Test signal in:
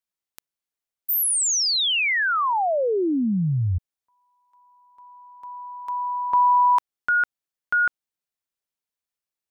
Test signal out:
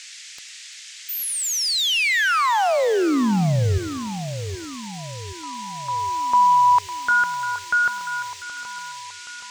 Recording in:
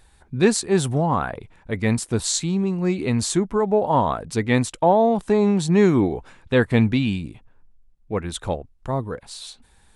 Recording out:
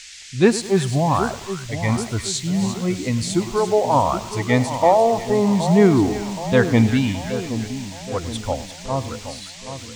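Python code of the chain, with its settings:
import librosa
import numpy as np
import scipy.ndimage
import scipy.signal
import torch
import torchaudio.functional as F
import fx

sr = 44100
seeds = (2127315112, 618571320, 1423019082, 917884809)

y = fx.noise_reduce_blind(x, sr, reduce_db=11)
y = fx.high_shelf(y, sr, hz=6300.0, db=-9.5)
y = fx.echo_split(y, sr, split_hz=1300.0, low_ms=773, high_ms=346, feedback_pct=52, wet_db=-10.5)
y = fx.dmg_noise_band(y, sr, seeds[0], low_hz=1800.0, high_hz=7700.0, level_db=-43.0)
y = fx.echo_crushed(y, sr, ms=103, feedback_pct=55, bits=6, wet_db=-15.0)
y = y * librosa.db_to_amplitude(2.5)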